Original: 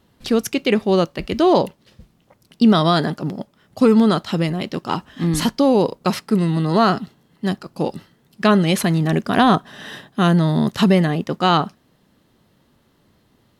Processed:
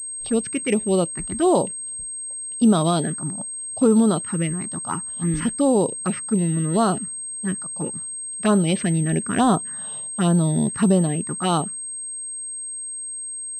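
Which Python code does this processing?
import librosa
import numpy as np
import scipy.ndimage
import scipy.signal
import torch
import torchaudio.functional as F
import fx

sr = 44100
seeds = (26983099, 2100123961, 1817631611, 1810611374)

y = fx.env_phaser(x, sr, low_hz=230.0, high_hz=2200.0, full_db=-10.5)
y = fx.pwm(y, sr, carrier_hz=8400.0)
y = F.gain(torch.from_numpy(y), -2.5).numpy()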